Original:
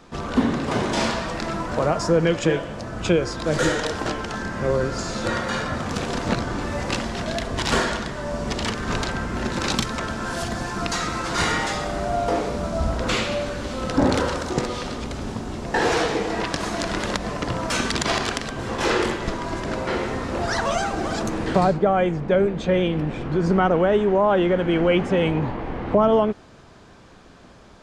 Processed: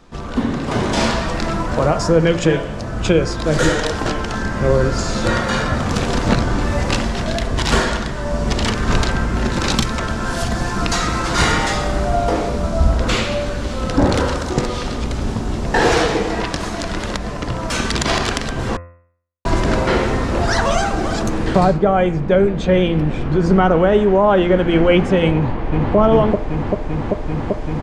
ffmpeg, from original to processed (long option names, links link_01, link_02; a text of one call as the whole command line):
ffmpeg -i in.wav -filter_complex "[0:a]asplit=2[link_01][link_02];[link_02]afade=type=in:start_time=25.33:duration=0.01,afade=type=out:start_time=25.96:duration=0.01,aecho=0:1:390|780|1170|1560|1950|2340|2730|3120|3510|3900|4290|4680:0.891251|0.713001|0.570401|0.45632|0.365056|0.292045|0.233636|0.186909|0.149527|0.119622|0.0956973|0.0765579[link_03];[link_01][link_03]amix=inputs=2:normalize=0,asplit=3[link_04][link_05][link_06];[link_04]atrim=end=18.77,asetpts=PTS-STARTPTS,afade=type=out:start_time=18.766:duration=0.004:curve=hsin[link_07];[link_05]atrim=start=18.77:end=19.45,asetpts=PTS-STARTPTS,volume=0[link_08];[link_06]atrim=start=19.45,asetpts=PTS-STARTPTS,afade=type=in:duration=0.004:curve=hsin[link_09];[link_07][link_08][link_09]concat=n=3:v=0:a=1,lowshelf=frequency=88:gain=10,bandreject=frequency=86.15:width_type=h:width=4,bandreject=frequency=172.3:width_type=h:width=4,bandreject=frequency=258.45:width_type=h:width=4,bandreject=frequency=344.6:width_type=h:width=4,bandreject=frequency=430.75:width_type=h:width=4,bandreject=frequency=516.9:width_type=h:width=4,bandreject=frequency=603.05:width_type=h:width=4,bandreject=frequency=689.2:width_type=h:width=4,bandreject=frequency=775.35:width_type=h:width=4,bandreject=frequency=861.5:width_type=h:width=4,bandreject=frequency=947.65:width_type=h:width=4,bandreject=frequency=1033.8:width_type=h:width=4,bandreject=frequency=1119.95:width_type=h:width=4,bandreject=frequency=1206.1:width_type=h:width=4,bandreject=frequency=1292.25:width_type=h:width=4,bandreject=frequency=1378.4:width_type=h:width=4,bandreject=frequency=1464.55:width_type=h:width=4,bandreject=frequency=1550.7:width_type=h:width=4,bandreject=frequency=1636.85:width_type=h:width=4,bandreject=frequency=1723:width_type=h:width=4,bandreject=frequency=1809.15:width_type=h:width=4,bandreject=frequency=1895.3:width_type=h:width=4,bandreject=frequency=1981.45:width_type=h:width=4,bandreject=frequency=2067.6:width_type=h:width=4,bandreject=frequency=2153.75:width_type=h:width=4,bandreject=frequency=2239.9:width_type=h:width=4,bandreject=frequency=2326.05:width_type=h:width=4,bandreject=frequency=2412.2:width_type=h:width=4,bandreject=frequency=2498.35:width_type=h:width=4,bandreject=frequency=2584.5:width_type=h:width=4,bandreject=frequency=2670.65:width_type=h:width=4,dynaudnorm=framelen=130:gausssize=11:maxgain=11.5dB,volume=-1dB" out.wav